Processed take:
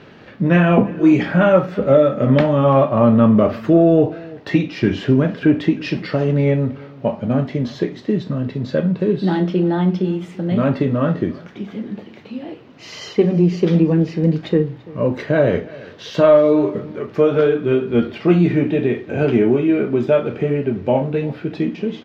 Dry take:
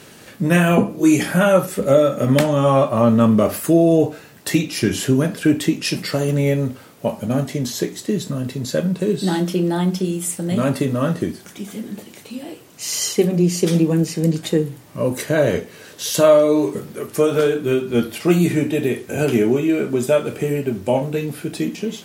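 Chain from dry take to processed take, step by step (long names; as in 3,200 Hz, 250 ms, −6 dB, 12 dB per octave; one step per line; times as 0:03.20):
parametric band 10,000 Hz −13 dB 0.86 octaves
in parallel at −9.5 dB: soft clipping −7.5 dBFS, distortion −20 dB
on the sum: high-frequency loss of the air 260 metres
single-tap delay 338 ms −21.5 dB
convolution reverb, pre-delay 20 ms, DRR 15.5 dB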